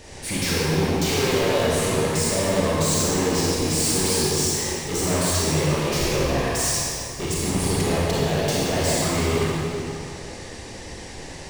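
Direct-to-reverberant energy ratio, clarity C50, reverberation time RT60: -7.5 dB, -5.0 dB, 2.6 s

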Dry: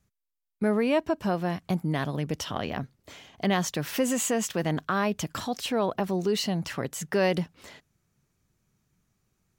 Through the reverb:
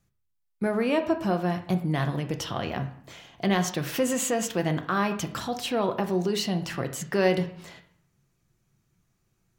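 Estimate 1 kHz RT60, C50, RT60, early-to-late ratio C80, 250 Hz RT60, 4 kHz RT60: 0.65 s, 11.5 dB, 0.60 s, 14.5 dB, 0.75 s, 0.50 s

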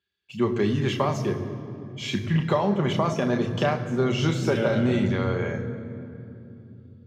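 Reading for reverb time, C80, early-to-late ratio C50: 3.0 s, 10.0 dB, 9.5 dB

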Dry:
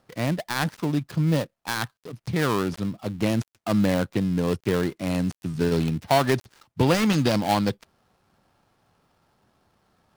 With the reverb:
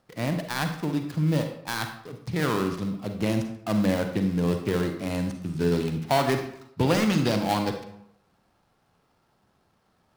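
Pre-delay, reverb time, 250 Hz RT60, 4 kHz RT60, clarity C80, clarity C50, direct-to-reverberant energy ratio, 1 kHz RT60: 37 ms, 0.75 s, 0.75 s, 0.50 s, 9.5 dB, 7.0 dB, 5.0 dB, 0.75 s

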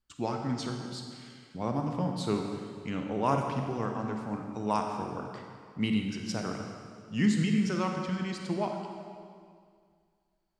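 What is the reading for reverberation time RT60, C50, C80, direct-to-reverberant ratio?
2.1 s, 3.0 dB, 4.5 dB, 2.5 dB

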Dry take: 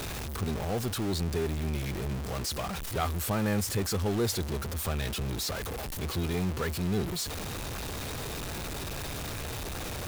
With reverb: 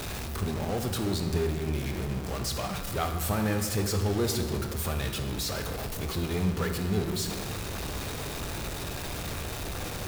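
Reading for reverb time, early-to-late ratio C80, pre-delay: 1.8 s, 8.0 dB, 17 ms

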